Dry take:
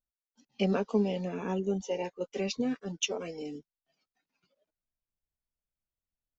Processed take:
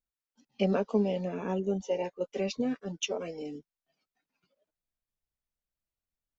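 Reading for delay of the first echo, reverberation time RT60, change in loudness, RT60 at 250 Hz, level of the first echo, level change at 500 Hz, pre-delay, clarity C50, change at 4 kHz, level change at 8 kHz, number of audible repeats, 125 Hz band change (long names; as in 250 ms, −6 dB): no echo audible, no reverb audible, +0.5 dB, no reverb audible, no echo audible, +1.5 dB, no reverb audible, no reverb audible, −2.0 dB, can't be measured, no echo audible, 0.0 dB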